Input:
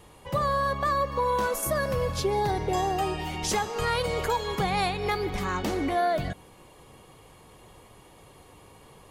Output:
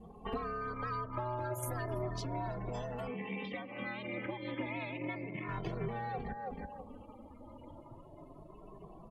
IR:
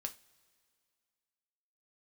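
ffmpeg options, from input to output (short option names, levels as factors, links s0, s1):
-filter_complex "[0:a]aeval=exprs='0.141*(cos(1*acos(clip(val(0)/0.141,-1,1)))-cos(1*PI/2))+0.0112*(cos(4*acos(clip(val(0)/0.141,-1,1)))-cos(4*PI/2))+0.0126*(cos(8*acos(clip(val(0)/0.141,-1,1)))-cos(8*PI/2))':c=same,aecho=1:1:326|652:0.266|0.0399,aeval=exprs='val(0)*sin(2*PI*120*n/s)':c=same,acompressor=threshold=0.00891:ratio=5,asettb=1/sr,asplit=3[s0][s1][s2];[s0]atrim=end=3.074[s3];[s1]atrim=start=3.07:end=5.49,asetpts=PTS-STARTPTS,afade=t=in:d=0.004:c=qsin,afade=t=out:st=2.416:d=0.004:c=qsin,highpass=180,equalizer=f=200:t=q:w=4:g=7,equalizer=f=390:t=q:w=4:g=4,equalizer=f=630:t=q:w=4:g=-5,equalizer=f=900:t=q:w=4:g=-6,equalizer=f=1400:t=q:w=4:g=-8,equalizer=f=2200:t=q:w=4:g=7,lowpass=f=3600:w=0.5412,lowpass=f=3600:w=1.3066[s4];[s2]atrim=start=5.486[s5];[s3][s4]acrossfade=d=0.004:c1=hsin:c2=qsin[s6];[s6][s5]acrossfade=d=0.004:c1=qsin:c2=hsin,afftdn=nr=28:nf=-52,asplit=2[s7][s8];[s8]adelay=2.2,afreqshift=0.32[s9];[s7][s9]amix=inputs=2:normalize=1,volume=2.66"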